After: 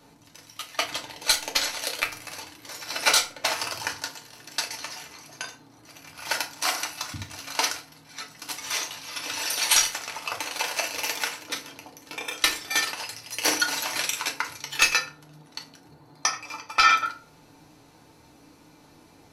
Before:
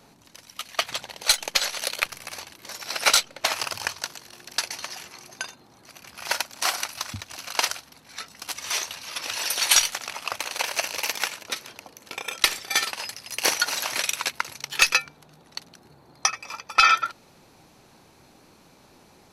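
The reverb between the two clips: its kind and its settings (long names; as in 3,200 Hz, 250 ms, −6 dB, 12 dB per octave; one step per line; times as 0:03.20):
feedback delay network reverb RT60 0.36 s, low-frequency decay 1.55×, high-frequency decay 0.75×, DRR 0.5 dB
level −3.5 dB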